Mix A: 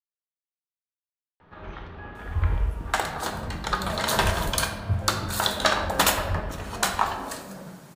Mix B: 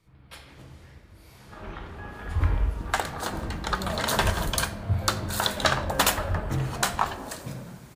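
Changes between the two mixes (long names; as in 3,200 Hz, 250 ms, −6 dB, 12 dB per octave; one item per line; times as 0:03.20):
speech: unmuted
second sound: send −10.0 dB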